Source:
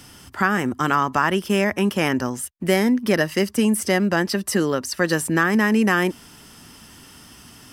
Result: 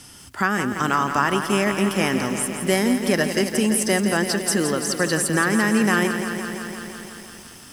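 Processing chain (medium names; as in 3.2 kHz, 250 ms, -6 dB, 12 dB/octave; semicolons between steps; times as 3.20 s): low-pass 11 kHz 24 dB/octave; treble shelf 6.6 kHz +10.5 dB; bit-crushed delay 170 ms, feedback 80%, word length 7-bit, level -8.5 dB; trim -2 dB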